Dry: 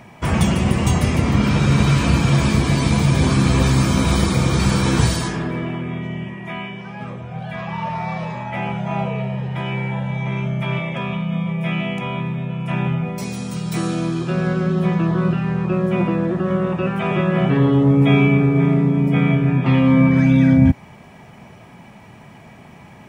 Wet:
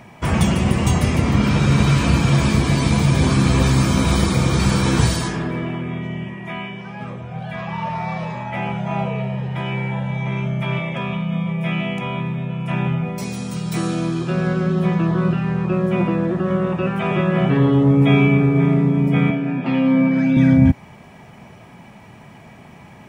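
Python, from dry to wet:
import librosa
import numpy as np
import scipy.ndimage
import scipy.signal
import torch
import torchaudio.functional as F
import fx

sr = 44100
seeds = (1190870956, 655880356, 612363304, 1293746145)

y = fx.cabinet(x, sr, low_hz=190.0, low_slope=24, high_hz=7400.0, hz=(410.0, 1100.0, 2000.0, 3500.0, 6200.0), db=(-6, -8, -5, -5, -6), at=(19.3, 20.37))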